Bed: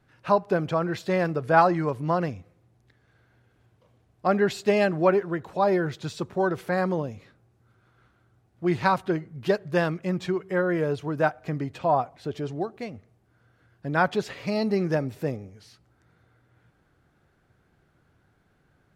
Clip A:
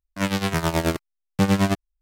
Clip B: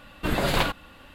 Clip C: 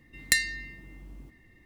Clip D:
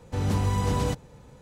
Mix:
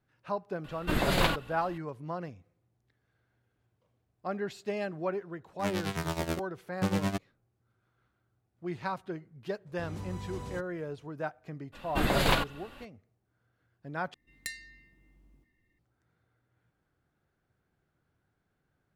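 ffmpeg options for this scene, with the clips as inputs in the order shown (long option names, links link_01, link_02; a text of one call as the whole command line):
ffmpeg -i bed.wav -i cue0.wav -i cue1.wav -i cue2.wav -i cue3.wav -filter_complex "[2:a]asplit=2[link_01][link_02];[0:a]volume=-12.5dB,asplit=2[link_03][link_04];[link_03]atrim=end=14.144[link_05];[3:a]atrim=end=1.65,asetpts=PTS-STARTPTS,volume=-16dB[link_06];[link_04]atrim=start=15.786[link_07];[link_01]atrim=end=1.14,asetpts=PTS-STARTPTS,volume=-3dB,afade=type=in:duration=0.004:curve=hsin,afade=type=out:start_time=1.136:duration=0.004:curve=hsin,adelay=640[link_08];[1:a]atrim=end=2.01,asetpts=PTS-STARTPTS,volume=-10.5dB,afade=type=in:duration=0.004:curve=hsin,afade=type=out:start_time=2.006:duration=0.004:curve=hsin,adelay=5430[link_09];[4:a]atrim=end=1.41,asetpts=PTS-STARTPTS,volume=-15.5dB,afade=type=in:duration=0.004:curve=hsin,afade=type=out:start_time=1.406:duration=0.004:curve=hsin,adelay=9660[link_10];[link_02]atrim=end=1.14,asetpts=PTS-STARTPTS,volume=-2dB,afade=type=in:duration=0.02,afade=type=out:start_time=1.12:duration=0.02,adelay=11720[link_11];[link_05][link_06]acrossfade=duration=0.004:curve1=hsin:curve2=hsin[link_12];[link_12][link_07]acrossfade=duration=0.004:curve1=hsin:curve2=hsin[link_13];[link_13][link_08][link_09][link_10][link_11]amix=inputs=5:normalize=0" out.wav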